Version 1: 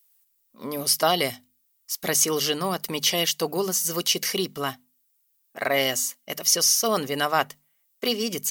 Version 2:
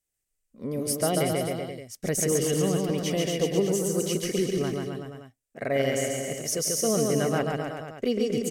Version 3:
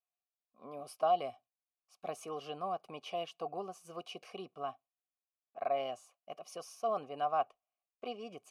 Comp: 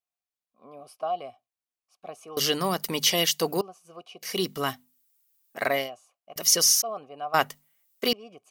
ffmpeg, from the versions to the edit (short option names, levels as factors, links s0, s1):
-filter_complex "[0:a]asplit=4[s0][s1][s2][s3];[2:a]asplit=5[s4][s5][s6][s7][s8];[s4]atrim=end=2.372[s9];[s0]atrim=start=2.368:end=3.612[s10];[s5]atrim=start=3.608:end=4.43[s11];[s1]atrim=start=4.19:end=5.9[s12];[s6]atrim=start=5.66:end=6.362[s13];[s2]atrim=start=6.358:end=6.822[s14];[s7]atrim=start=6.818:end=7.342[s15];[s3]atrim=start=7.338:end=8.132[s16];[s8]atrim=start=8.128[s17];[s9][s10]acrossfade=d=0.004:c1=hsin:c2=hsin[s18];[s18][s11]acrossfade=d=0.004:c1=hsin:c2=hsin[s19];[s19][s12]acrossfade=d=0.24:c1=tri:c2=tri[s20];[s20][s13]acrossfade=d=0.24:c1=tri:c2=tri[s21];[s21][s14]acrossfade=d=0.004:c1=hsin:c2=hsin[s22];[s22][s15]acrossfade=d=0.004:c1=hsin:c2=hsin[s23];[s23][s16]acrossfade=d=0.004:c1=hsin:c2=hsin[s24];[s24][s17]acrossfade=d=0.004:c1=hsin:c2=hsin"